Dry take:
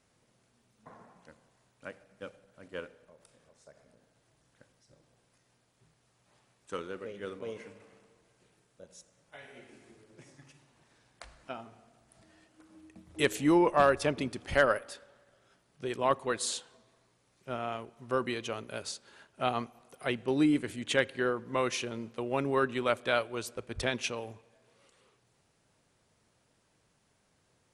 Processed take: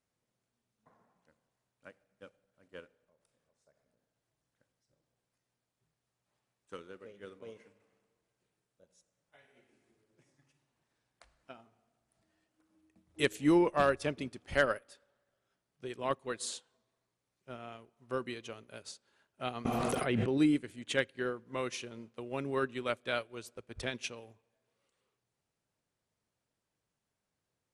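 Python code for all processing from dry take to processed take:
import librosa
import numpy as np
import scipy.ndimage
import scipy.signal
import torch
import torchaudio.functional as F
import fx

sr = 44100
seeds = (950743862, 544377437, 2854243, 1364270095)

y = fx.chain(x, sr, fx.high_shelf(hz=3200.0, db=-11.0),
    fx.env_flatten(amount_pct=100), at=(19.65, 20.38))
y = fx.dynamic_eq(y, sr, hz=880.0, q=0.99, threshold_db=-42.0, ratio=4.0, max_db=-5)
y = fx.upward_expand(y, sr, threshold_db=-53.0, expansion=1.5)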